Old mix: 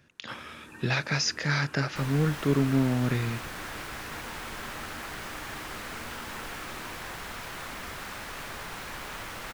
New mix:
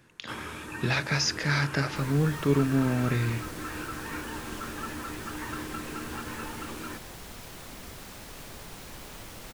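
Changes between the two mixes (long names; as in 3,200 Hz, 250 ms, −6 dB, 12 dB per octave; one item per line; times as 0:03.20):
first sound +7.5 dB
second sound: add parametric band 1,500 Hz −11 dB 2.3 octaves
reverb: on, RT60 0.35 s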